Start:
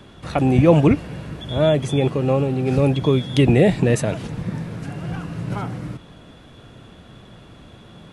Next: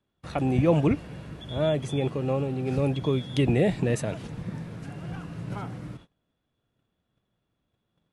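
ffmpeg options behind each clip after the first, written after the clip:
ffmpeg -i in.wav -af "agate=range=-26dB:threshold=-38dB:ratio=16:detection=peak,volume=-8dB" out.wav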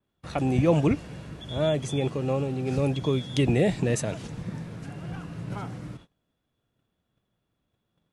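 ffmpeg -i in.wav -af "adynamicequalizer=threshold=0.00158:dfrequency=6600:dqfactor=1:tfrequency=6600:tqfactor=1:attack=5:release=100:ratio=0.375:range=3.5:mode=boostabove:tftype=bell" out.wav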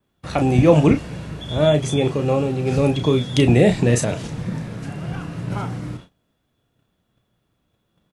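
ffmpeg -i in.wav -filter_complex "[0:a]asplit=2[link_01][link_02];[link_02]adelay=33,volume=-8dB[link_03];[link_01][link_03]amix=inputs=2:normalize=0,volume=7.5dB" out.wav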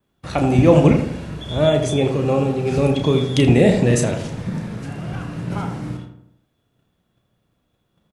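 ffmpeg -i in.wav -filter_complex "[0:a]asplit=2[link_01][link_02];[link_02]adelay=80,lowpass=frequency=1800:poles=1,volume=-6dB,asplit=2[link_03][link_04];[link_04]adelay=80,lowpass=frequency=1800:poles=1,volume=0.52,asplit=2[link_05][link_06];[link_06]adelay=80,lowpass=frequency=1800:poles=1,volume=0.52,asplit=2[link_07][link_08];[link_08]adelay=80,lowpass=frequency=1800:poles=1,volume=0.52,asplit=2[link_09][link_10];[link_10]adelay=80,lowpass=frequency=1800:poles=1,volume=0.52,asplit=2[link_11][link_12];[link_12]adelay=80,lowpass=frequency=1800:poles=1,volume=0.52[link_13];[link_01][link_03][link_05][link_07][link_09][link_11][link_13]amix=inputs=7:normalize=0" out.wav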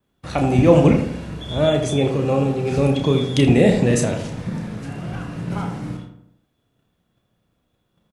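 ffmpeg -i in.wav -filter_complex "[0:a]asplit=2[link_01][link_02];[link_02]adelay=29,volume=-11.5dB[link_03];[link_01][link_03]amix=inputs=2:normalize=0,volume=-1dB" out.wav

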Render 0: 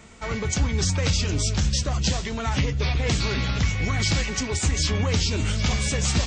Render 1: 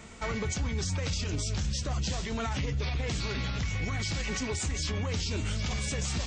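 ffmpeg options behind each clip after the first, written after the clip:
ffmpeg -i in.wav -af "alimiter=limit=-23.5dB:level=0:latency=1:release=98" out.wav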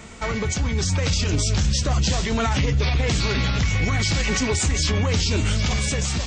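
ffmpeg -i in.wav -af "dynaudnorm=framelen=340:gausssize=5:maxgain=3.5dB,volume=7dB" out.wav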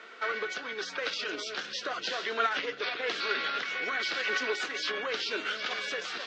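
ffmpeg -i in.wav -af "highpass=frequency=400:width=0.5412,highpass=frequency=400:width=1.3066,equalizer=frequency=610:width_type=q:width=4:gain=-4,equalizer=frequency=880:width_type=q:width=4:gain=-8,equalizer=frequency=1500:width_type=q:width=4:gain=9,equalizer=frequency=2300:width_type=q:width=4:gain=-3,lowpass=frequency=4200:width=0.5412,lowpass=frequency=4200:width=1.3066,volume=-4dB" out.wav

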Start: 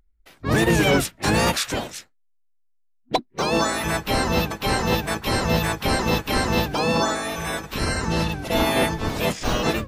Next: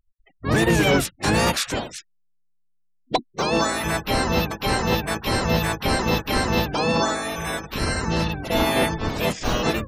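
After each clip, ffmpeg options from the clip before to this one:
ffmpeg -i in.wav -af "afftfilt=real='re*gte(hypot(re,im),0.0112)':imag='im*gte(hypot(re,im),0.0112)':win_size=1024:overlap=0.75" out.wav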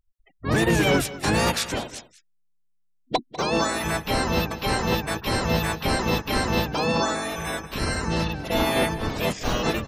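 ffmpeg -i in.wav -af "aecho=1:1:197:0.15,volume=-2dB" out.wav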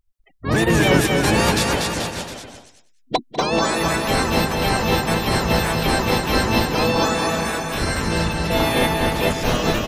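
ffmpeg -i in.wav -af "aecho=1:1:240|432|585.6|708.5|806.8:0.631|0.398|0.251|0.158|0.1,volume=3dB" out.wav

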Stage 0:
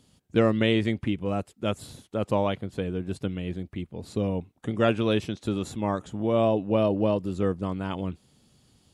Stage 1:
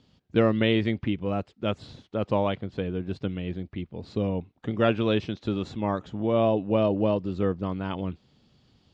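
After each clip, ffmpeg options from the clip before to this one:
ffmpeg -i in.wav -af "lowpass=frequency=5000:width=0.5412,lowpass=frequency=5000:width=1.3066" out.wav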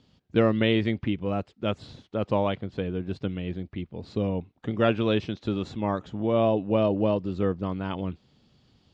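ffmpeg -i in.wav -af anull out.wav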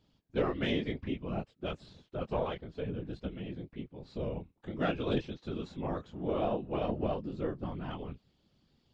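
ffmpeg -i in.wav -af "flanger=delay=17:depth=6.6:speed=0.55,aeval=exprs='0.251*(cos(1*acos(clip(val(0)/0.251,-1,1)))-cos(1*PI/2))+0.0158*(cos(4*acos(clip(val(0)/0.251,-1,1)))-cos(4*PI/2))':channel_layout=same,afftfilt=real='hypot(re,im)*cos(2*PI*random(0))':imag='hypot(re,im)*sin(2*PI*random(1))':win_size=512:overlap=0.75" out.wav

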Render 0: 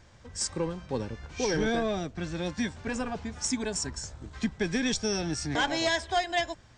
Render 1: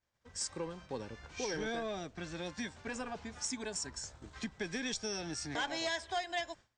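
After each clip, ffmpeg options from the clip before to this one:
ffmpeg -i in.wav -af "agate=range=-33dB:threshold=-40dB:ratio=3:detection=peak,lowshelf=frequency=290:gain=-8.5,acompressor=threshold=-50dB:ratio=1.5,volume=1dB" out.wav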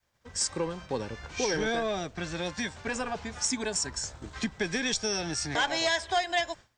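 ffmpeg -i in.wav -af "adynamicequalizer=threshold=0.00178:dfrequency=270:dqfactor=1.7:tfrequency=270:tqfactor=1.7:attack=5:release=100:ratio=0.375:range=2.5:mode=cutabove:tftype=bell,volume=9dB" out.wav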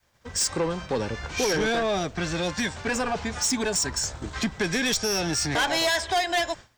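ffmpeg -i in.wav -af "asoftclip=type=tanh:threshold=-28dB,volume=8.5dB" out.wav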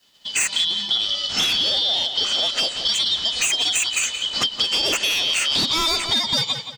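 ffmpeg -i in.wav -filter_complex "[0:a]afftfilt=real='real(if(lt(b,272),68*(eq(floor(b/68),0)*2+eq(floor(b/68),1)*3+eq(floor(b/68),2)*0+eq(floor(b/68),3)*1)+mod(b,68),b),0)':imag='imag(if(lt(b,272),68*(eq(floor(b/68),0)*2+eq(floor(b/68),1)*3+eq(floor(b/68),2)*0+eq(floor(b/68),3)*1)+mod(b,68),b),0)':win_size=2048:overlap=0.75,asplit=2[link_01][link_02];[link_02]adelay=173,lowpass=frequency=4400:poles=1,volume=-11dB,asplit=2[link_03][link_04];[link_04]adelay=173,lowpass=frequency=4400:poles=1,volume=0.29,asplit=2[link_05][link_06];[link_06]adelay=173,lowpass=frequency=4400:poles=1,volume=0.29[link_07];[link_01][link_03][link_05][link_07]amix=inputs=4:normalize=0,acompressor=threshold=-26dB:ratio=6,volume=8.5dB" out.wav

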